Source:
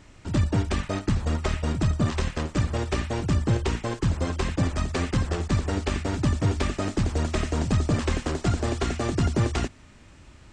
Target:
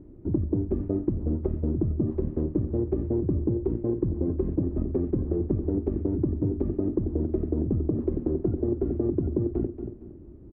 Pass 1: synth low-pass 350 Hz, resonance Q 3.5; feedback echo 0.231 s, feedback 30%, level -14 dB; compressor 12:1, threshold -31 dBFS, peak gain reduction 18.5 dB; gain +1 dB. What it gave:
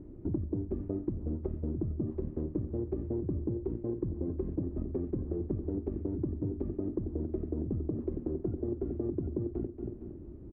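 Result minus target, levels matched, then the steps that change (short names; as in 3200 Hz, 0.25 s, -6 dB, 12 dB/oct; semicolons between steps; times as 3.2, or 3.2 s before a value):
compressor: peak gain reduction +8 dB
change: compressor 12:1, threshold -22.5 dBFS, peak gain reduction 10.5 dB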